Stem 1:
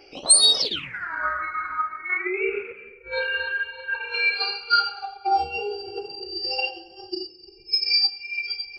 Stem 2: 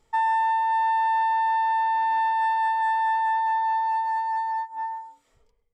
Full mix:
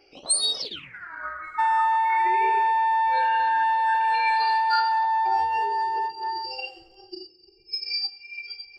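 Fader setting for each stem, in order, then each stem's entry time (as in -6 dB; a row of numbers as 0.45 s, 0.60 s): -8.0 dB, +1.0 dB; 0.00 s, 1.45 s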